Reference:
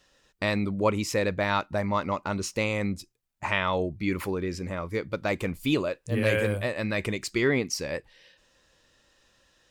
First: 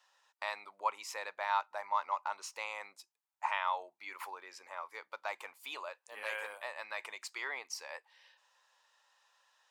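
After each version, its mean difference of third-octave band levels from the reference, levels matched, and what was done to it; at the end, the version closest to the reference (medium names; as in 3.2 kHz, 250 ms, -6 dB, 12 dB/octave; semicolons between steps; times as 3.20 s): 10.5 dB: in parallel at -3 dB: compression, threshold -38 dBFS, peak gain reduction 18 dB; on the sum: ladder high-pass 790 Hz, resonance 60%; trim -2 dB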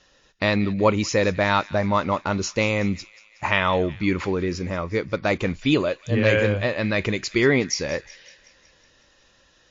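3.0 dB: on a send: feedback echo behind a high-pass 184 ms, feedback 60%, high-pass 1.7 kHz, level -17.5 dB; on the sum: trim +6 dB; MP3 40 kbps 16 kHz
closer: second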